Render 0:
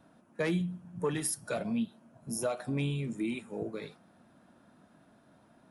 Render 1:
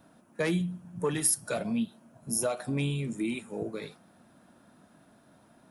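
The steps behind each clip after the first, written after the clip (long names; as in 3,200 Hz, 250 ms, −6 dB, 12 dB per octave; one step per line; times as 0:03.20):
high-shelf EQ 6,400 Hz +8 dB
level +2 dB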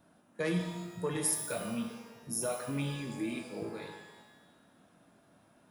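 reverb with rising layers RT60 1.1 s, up +12 semitones, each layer −8 dB, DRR 3 dB
level −6 dB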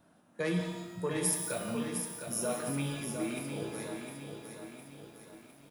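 single-tap delay 173 ms −11.5 dB
feedback echo at a low word length 707 ms, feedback 55%, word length 10 bits, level −7 dB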